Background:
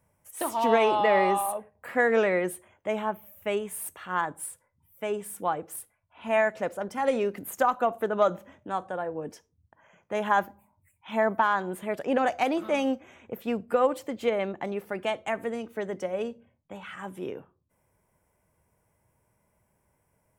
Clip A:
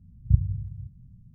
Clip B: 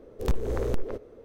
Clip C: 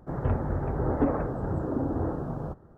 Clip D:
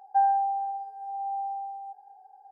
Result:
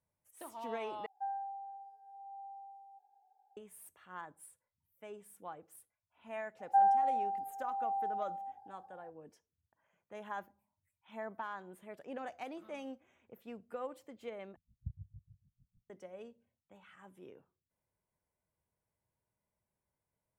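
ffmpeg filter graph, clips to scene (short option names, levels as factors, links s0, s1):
-filter_complex "[4:a]asplit=2[s0][s1];[0:a]volume=0.119[s2];[1:a]aeval=exprs='val(0)*pow(10,-31*(0.5-0.5*cos(2*PI*6.6*n/s))/20)':c=same[s3];[s2]asplit=3[s4][s5][s6];[s4]atrim=end=1.064[s7];[s0]atrim=end=2.51,asetpts=PTS-STARTPTS,volume=0.141[s8];[s5]atrim=start=3.566:end=14.564[s9];[s3]atrim=end=1.34,asetpts=PTS-STARTPTS,volume=0.158[s10];[s6]atrim=start=15.896[s11];[s1]atrim=end=2.51,asetpts=PTS-STARTPTS,volume=0.631,afade=t=in:d=0.004:c=hsin,afade=t=out:st=2.506:d=0.004:c=hsin,adelay=6590[s12];[s7][s8]acrossfade=d=0.004:c1=hsin:c2=hsin[s13];[s13][s9]acrossfade=d=0.004:c1=hsin:c2=hsin[s14];[s14][s10]acrossfade=d=0.004:c1=hsin:c2=hsin[s15];[s15][s11]acrossfade=d=0.004:c1=hsin:c2=hsin[s16];[s16][s12]amix=inputs=2:normalize=0"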